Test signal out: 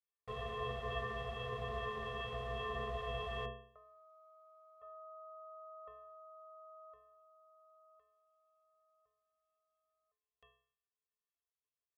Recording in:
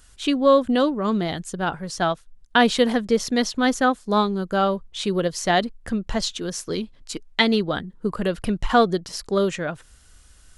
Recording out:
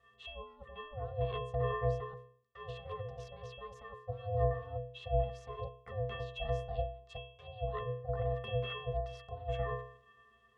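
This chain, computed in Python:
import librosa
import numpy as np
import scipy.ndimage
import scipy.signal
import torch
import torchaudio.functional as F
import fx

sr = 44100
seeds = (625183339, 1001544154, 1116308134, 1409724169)

y = np.minimum(x, 2.0 * 10.0 ** (-14.0 / 20.0) - x)
y = scipy.signal.sosfilt(scipy.signal.butter(2, 280.0, 'highpass', fs=sr, output='sos'), y)
y = fx.over_compress(y, sr, threshold_db=-30.0, ratio=-1.0)
y = fx.octave_resonator(y, sr, note='F#', decay_s=0.54)
y = y * np.sin(2.0 * np.pi * 310.0 * np.arange(len(y)) / sr)
y = y * librosa.db_to_amplitude(11.5)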